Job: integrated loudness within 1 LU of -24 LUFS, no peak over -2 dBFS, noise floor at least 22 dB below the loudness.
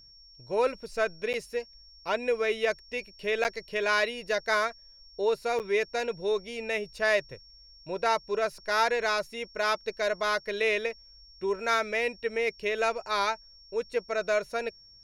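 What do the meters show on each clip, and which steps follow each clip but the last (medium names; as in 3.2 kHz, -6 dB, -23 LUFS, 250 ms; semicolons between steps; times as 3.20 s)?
dropouts 3; longest dropout 8.5 ms; steady tone 5.5 kHz; tone level -52 dBFS; loudness -29.5 LUFS; peak level -12.0 dBFS; loudness target -24.0 LUFS
-> interpolate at 1.33/3.44/5.59 s, 8.5 ms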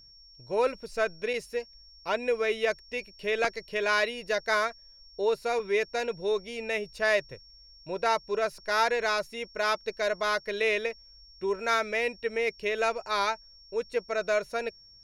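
dropouts 0; steady tone 5.5 kHz; tone level -52 dBFS
-> band-stop 5.5 kHz, Q 30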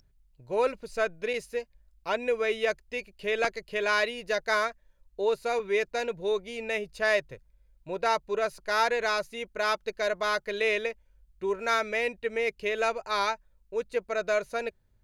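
steady tone not found; loudness -29.5 LUFS; peak level -12.5 dBFS; loudness target -24.0 LUFS
-> trim +5.5 dB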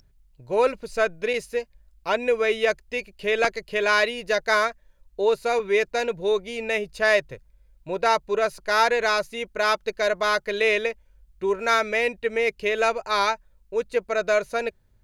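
loudness -24.0 LUFS; peak level -7.0 dBFS; noise floor -60 dBFS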